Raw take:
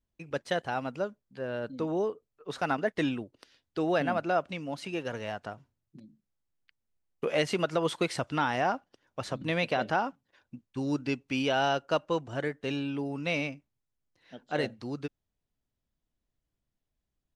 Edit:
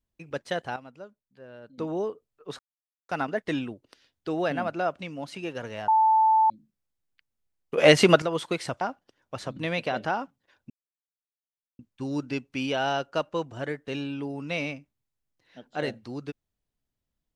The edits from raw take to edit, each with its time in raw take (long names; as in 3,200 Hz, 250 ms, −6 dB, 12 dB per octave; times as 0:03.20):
0:00.76–0:01.78: clip gain −11.5 dB
0:02.59: splice in silence 0.50 s
0:05.38–0:06.00: beep over 880 Hz −16.5 dBFS
0:07.28–0:07.72: clip gain +11.5 dB
0:08.31–0:08.66: remove
0:10.55: splice in silence 1.09 s